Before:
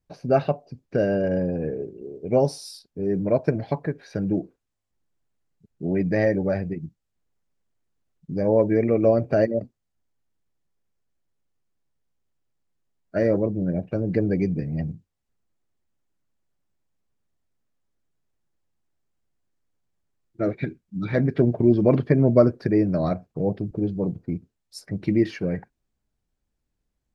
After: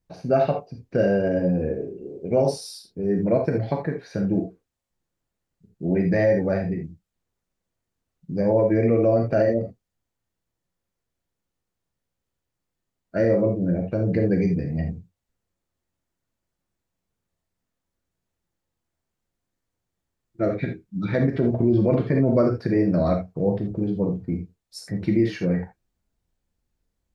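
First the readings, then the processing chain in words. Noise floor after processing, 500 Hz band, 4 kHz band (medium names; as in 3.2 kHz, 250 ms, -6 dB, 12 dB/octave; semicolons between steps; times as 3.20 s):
-83 dBFS, +0.5 dB, no reading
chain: gated-style reverb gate 100 ms flat, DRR 2.5 dB; peak limiter -10.5 dBFS, peak gain reduction 6 dB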